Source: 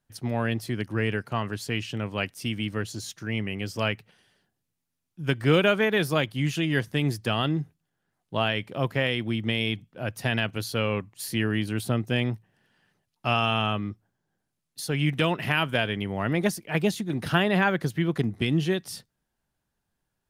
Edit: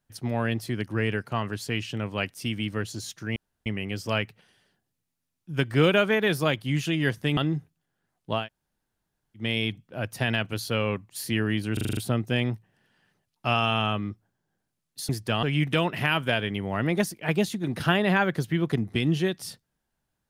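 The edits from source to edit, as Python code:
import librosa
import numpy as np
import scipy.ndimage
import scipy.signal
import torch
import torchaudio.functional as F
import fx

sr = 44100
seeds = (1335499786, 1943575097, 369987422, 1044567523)

y = fx.edit(x, sr, fx.insert_room_tone(at_s=3.36, length_s=0.3),
    fx.move(start_s=7.07, length_s=0.34, to_s=14.89),
    fx.room_tone_fill(start_s=8.45, length_s=1.01, crossfade_s=0.16),
    fx.stutter(start_s=11.77, slice_s=0.04, count=7), tone=tone)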